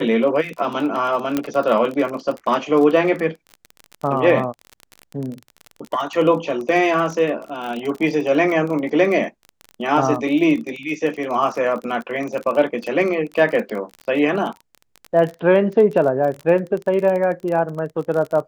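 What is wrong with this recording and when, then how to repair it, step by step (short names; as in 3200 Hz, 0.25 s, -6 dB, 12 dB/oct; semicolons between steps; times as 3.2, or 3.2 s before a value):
crackle 29/s -25 dBFS
1.37 pop -7 dBFS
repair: de-click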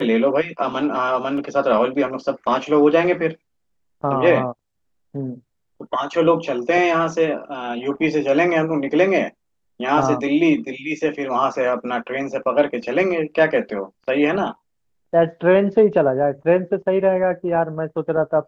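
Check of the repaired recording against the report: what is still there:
1.37 pop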